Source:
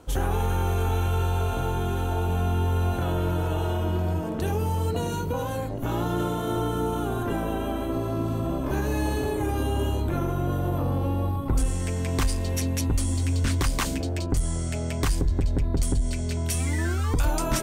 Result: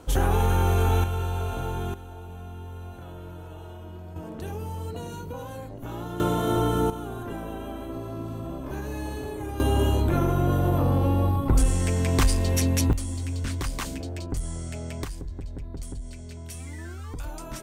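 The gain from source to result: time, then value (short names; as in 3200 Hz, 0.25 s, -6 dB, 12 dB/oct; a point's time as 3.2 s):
+3 dB
from 1.04 s -3.5 dB
from 1.94 s -15 dB
from 4.16 s -8 dB
from 6.2 s +3 dB
from 6.9 s -7 dB
from 9.6 s +3.5 dB
from 12.93 s -5.5 dB
from 15.04 s -12 dB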